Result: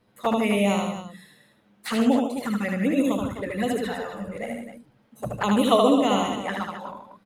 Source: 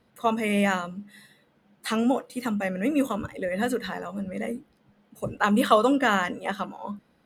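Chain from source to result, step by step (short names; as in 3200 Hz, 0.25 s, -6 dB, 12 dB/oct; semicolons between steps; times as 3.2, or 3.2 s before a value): envelope flanger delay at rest 10.1 ms, full sweep at -22 dBFS; loudspeakers at several distances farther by 26 m -3 dB, 52 m -9 dB, 89 m -11 dB; gain +2 dB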